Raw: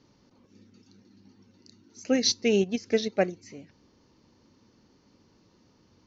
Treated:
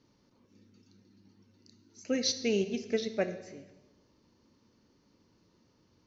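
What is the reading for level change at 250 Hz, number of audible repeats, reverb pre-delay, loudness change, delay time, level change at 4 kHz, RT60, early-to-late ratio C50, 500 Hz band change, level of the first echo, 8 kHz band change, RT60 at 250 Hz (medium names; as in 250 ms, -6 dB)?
-6.0 dB, no echo, 14 ms, -6.0 dB, no echo, -5.5 dB, 1.1 s, 12.0 dB, -5.5 dB, no echo, no reading, 1.3 s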